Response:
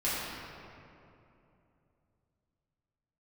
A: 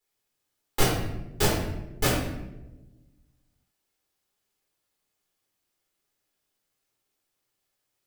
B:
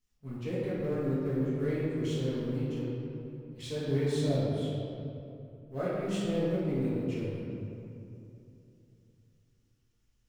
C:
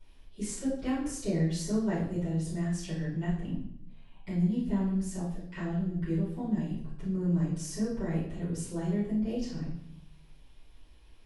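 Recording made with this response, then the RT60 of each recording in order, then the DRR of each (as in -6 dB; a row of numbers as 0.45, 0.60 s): B; 1.0, 2.8, 0.70 s; -6.0, -10.5, -13.0 dB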